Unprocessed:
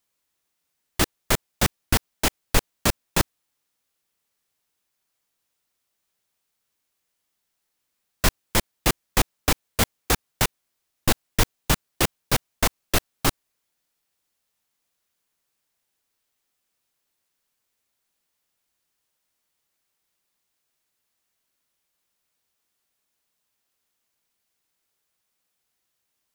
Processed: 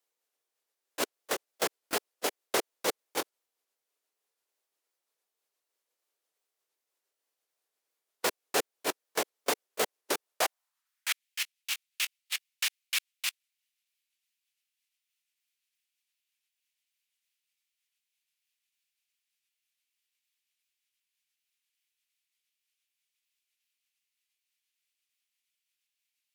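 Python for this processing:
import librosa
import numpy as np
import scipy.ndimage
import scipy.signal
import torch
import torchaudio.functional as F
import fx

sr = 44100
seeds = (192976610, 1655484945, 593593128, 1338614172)

y = fx.pitch_ramps(x, sr, semitones=-4.5, every_ms=375)
y = fx.filter_sweep_highpass(y, sr, from_hz=440.0, to_hz=2500.0, start_s=10.26, end_s=11.23, q=2.1)
y = y * librosa.db_to_amplitude(-6.5)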